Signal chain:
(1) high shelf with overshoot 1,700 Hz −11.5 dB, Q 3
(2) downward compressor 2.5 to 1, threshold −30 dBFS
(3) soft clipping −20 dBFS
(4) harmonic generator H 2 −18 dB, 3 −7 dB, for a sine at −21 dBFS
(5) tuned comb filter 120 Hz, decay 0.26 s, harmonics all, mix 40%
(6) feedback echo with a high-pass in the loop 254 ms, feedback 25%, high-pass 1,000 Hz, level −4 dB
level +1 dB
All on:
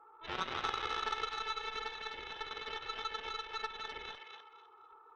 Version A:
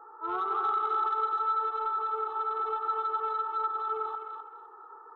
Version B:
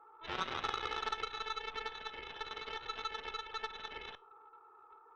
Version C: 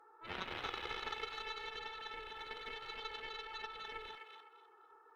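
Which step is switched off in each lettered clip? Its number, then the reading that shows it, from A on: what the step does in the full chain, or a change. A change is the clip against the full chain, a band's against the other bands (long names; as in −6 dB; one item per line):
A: 4, change in crest factor −11.0 dB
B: 6, echo-to-direct ratio −5.5 dB to none audible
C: 1, change in momentary loudness spread −2 LU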